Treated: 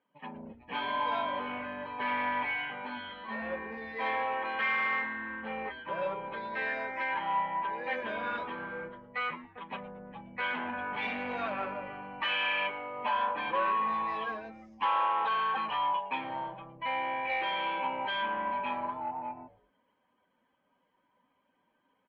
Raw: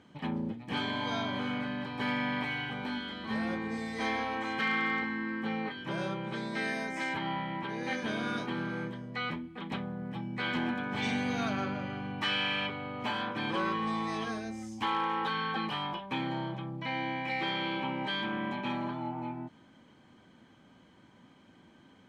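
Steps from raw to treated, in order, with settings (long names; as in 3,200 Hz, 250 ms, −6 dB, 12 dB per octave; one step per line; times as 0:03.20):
spectral dynamics exaggerated over time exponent 1.5
automatic gain control gain up to 4.5 dB
soft clipping −27.5 dBFS, distortion −14 dB
loudspeaker in its box 330–3,200 Hz, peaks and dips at 340 Hz −9 dB, 550 Hz +8 dB, 1,000 Hz +10 dB, 1,800 Hz +4 dB, 2,600 Hz +6 dB
echo with shifted repeats 112 ms, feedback 35%, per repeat −150 Hz, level −17.5 dB
level −1.5 dB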